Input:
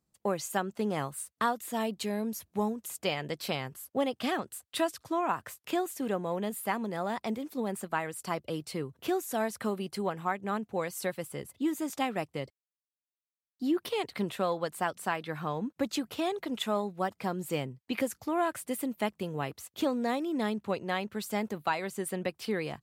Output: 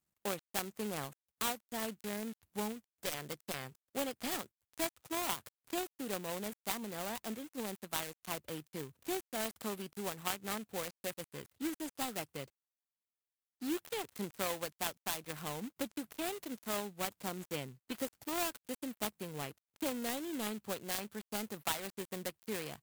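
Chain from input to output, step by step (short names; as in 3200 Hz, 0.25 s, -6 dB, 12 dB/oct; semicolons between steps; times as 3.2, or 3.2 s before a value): switching dead time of 0.23 ms; pre-emphasis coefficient 0.8; in parallel at -8 dB: sample-rate reducer 6700 Hz, jitter 0%; on the sum: gain +2.5 dB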